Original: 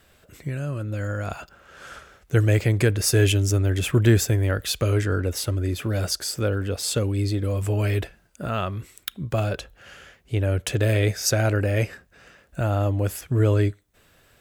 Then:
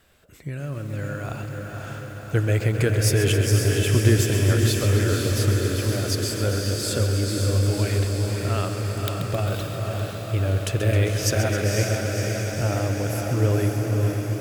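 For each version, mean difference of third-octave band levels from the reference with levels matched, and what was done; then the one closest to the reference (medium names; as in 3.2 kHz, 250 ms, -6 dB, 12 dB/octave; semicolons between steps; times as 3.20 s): 9.0 dB: on a send: echo that smears into a reverb 526 ms, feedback 70%, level -3.5 dB; on the sum: bit-crushed delay 133 ms, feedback 80%, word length 7-bit, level -10 dB; trim -2.5 dB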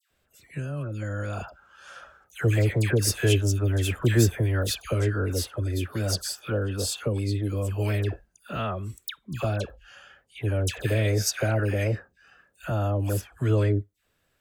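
6.5 dB: spectral noise reduction 11 dB; phase dispersion lows, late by 107 ms, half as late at 1.4 kHz; trim -3 dB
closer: second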